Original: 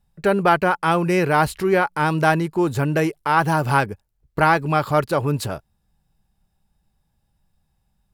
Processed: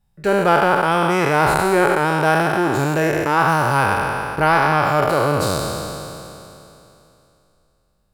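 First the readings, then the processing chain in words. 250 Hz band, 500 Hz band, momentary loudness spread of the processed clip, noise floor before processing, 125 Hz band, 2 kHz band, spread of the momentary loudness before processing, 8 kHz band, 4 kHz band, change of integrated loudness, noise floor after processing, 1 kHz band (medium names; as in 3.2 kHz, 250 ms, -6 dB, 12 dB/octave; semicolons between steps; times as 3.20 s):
+1.0 dB, +3.0 dB, 8 LU, -70 dBFS, +0.5 dB, +4.0 dB, 6 LU, +6.5 dB, +5.0 dB, +2.5 dB, -64 dBFS, +3.5 dB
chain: spectral sustain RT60 2.88 s; trim -2 dB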